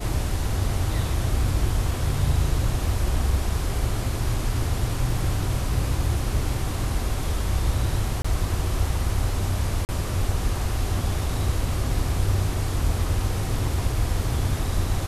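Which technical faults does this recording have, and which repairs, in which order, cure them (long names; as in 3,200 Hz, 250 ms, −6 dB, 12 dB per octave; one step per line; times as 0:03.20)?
0:08.22–0:08.24: drop-out 25 ms
0:09.85–0:09.89: drop-out 39 ms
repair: repair the gap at 0:08.22, 25 ms
repair the gap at 0:09.85, 39 ms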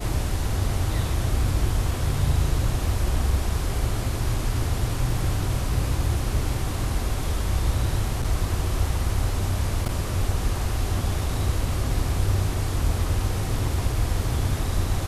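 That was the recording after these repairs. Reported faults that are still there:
none of them is left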